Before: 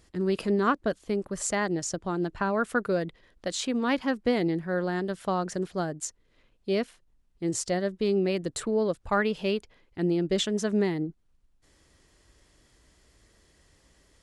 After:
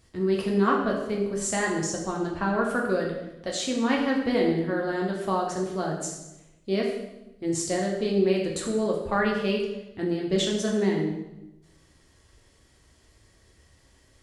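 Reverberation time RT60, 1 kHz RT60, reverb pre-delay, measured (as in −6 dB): 0.95 s, 0.90 s, 4 ms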